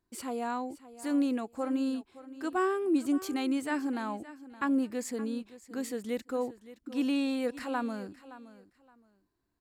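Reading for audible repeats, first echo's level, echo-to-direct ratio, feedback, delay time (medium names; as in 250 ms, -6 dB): 2, -16.5 dB, -16.5 dB, 22%, 569 ms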